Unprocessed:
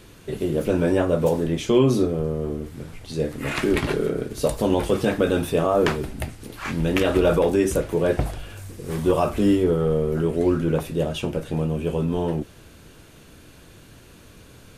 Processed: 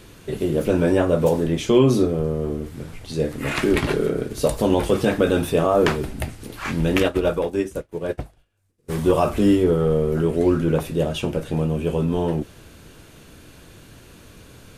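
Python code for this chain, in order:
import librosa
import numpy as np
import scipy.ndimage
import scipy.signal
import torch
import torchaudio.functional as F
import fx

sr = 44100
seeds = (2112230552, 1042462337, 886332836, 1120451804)

y = fx.upward_expand(x, sr, threshold_db=-39.0, expansion=2.5, at=(7.07, 8.88), fade=0.02)
y = y * librosa.db_to_amplitude(2.0)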